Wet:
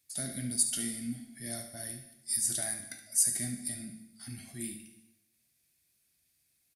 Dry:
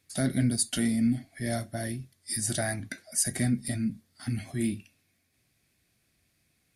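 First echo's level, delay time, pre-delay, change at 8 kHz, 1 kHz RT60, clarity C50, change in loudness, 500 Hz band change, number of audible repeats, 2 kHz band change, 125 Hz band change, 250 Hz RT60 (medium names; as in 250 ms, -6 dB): -12.0 dB, 72 ms, 7 ms, +2.0 dB, 0.95 s, 7.0 dB, -2.5 dB, -12.0 dB, 1, -9.5 dB, -13.5 dB, 0.90 s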